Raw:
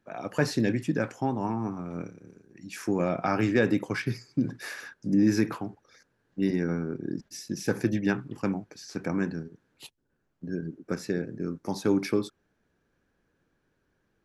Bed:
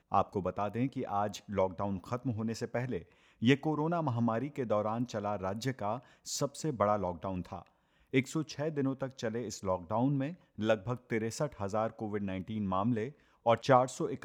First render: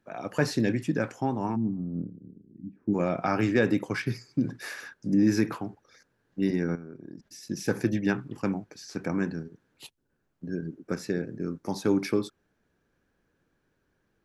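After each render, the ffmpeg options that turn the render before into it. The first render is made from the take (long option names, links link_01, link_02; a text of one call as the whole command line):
ffmpeg -i in.wav -filter_complex "[0:a]asplit=3[link_01][link_02][link_03];[link_01]afade=type=out:start_time=1.55:duration=0.02[link_04];[link_02]lowpass=frequency=240:width_type=q:width=1.9,afade=type=in:start_time=1.55:duration=0.02,afade=type=out:start_time=2.93:duration=0.02[link_05];[link_03]afade=type=in:start_time=2.93:duration=0.02[link_06];[link_04][link_05][link_06]amix=inputs=3:normalize=0,asettb=1/sr,asplit=3[link_07][link_08][link_09];[link_07]atrim=end=6.754[link_10];[link_08]atrim=start=6.75:end=7.43,asetpts=PTS-STARTPTS,afade=type=in:duration=0.004:curve=qsin,afade=type=out:start_time=0.676:duration=0.004:curve=qsin,acompressor=threshold=-47dB:ratio=2:attack=3.2:release=140:knee=1:detection=peak[link_11];[link_09]atrim=start=7.426[link_12];[link_10][link_11]acrossfade=duration=0.004:curve1=hsin:curve2=qsin[link_13];[link_13][link_12]acrossfade=duration=0.004:curve1=qsin:curve2=hsin" out.wav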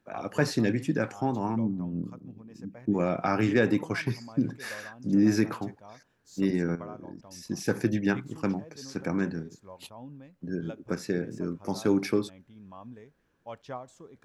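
ffmpeg -i in.wav -i bed.wav -filter_complex "[1:a]volume=-14.5dB[link_01];[0:a][link_01]amix=inputs=2:normalize=0" out.wav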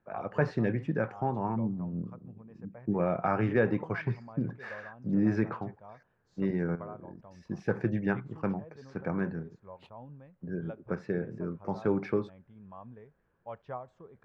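ffmpeg -i in.wav -af "lowpass=1600,equalizer=frequency=280:width_type=o:width=0.51:gain=-9.5" out.wav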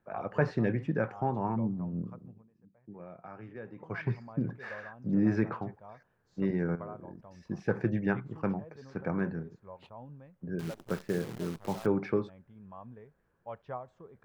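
ffmpeg -i in.wav -filter_complex "[0:a]asettb=1/sr,asplit=3[link_01][link_02][link_03];[link_01]atrim=end=10.594[link_04];[link_02]atrim=start=10.59:end=11.86,asetpts=PTS-STARTPTS,afade=type=in:duration=0.004:curve=qsin,afade=type=out:start_time=1.266:duration=0.004:curve=qsin,acrusher=bits=8:dc=4:mix=0:aa=0.000001[link_05];[link_03]atrim=start=11.856[link_06];[link_04][link_05]acrossfade=duration=0.004:curve1=hsin:curve2=qsin[link_07];[link_07][link_06]acrossfade=duration=0.004:curve1=qsin:curve2=hsin,asplit=3[link_08][link_09][link_10];[link_08]atrim=end=2.51,asetpts=PTS-STARTPTS,afade=type=out:start_time=2.2:duration=0.31:silence=0.11885[link_11];[link_09]atrim=start=2.51:end=3.76,asetpts=PTS-STARTPTS,volume=-18.5dB[link_12];[link_10]atrim=start=3.76,asetpts=PTS-STARTPTS,afade=type=in:duration=0.31:silence=0.11885[link_13];[link_11][link_12][link_13]concat=n=3:v=0:a=1" out.wav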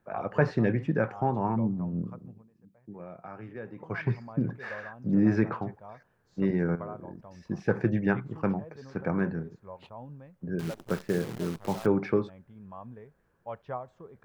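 ffmpeg -i in.wav -af "volume=3.5dB" out.wav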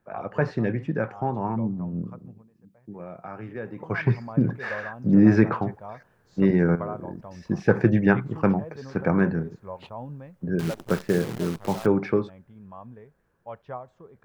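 ffmpeg -i in.wav -af "dynaudnorm=framelen=350:gausssize=17:maxgain=8dB" out.wav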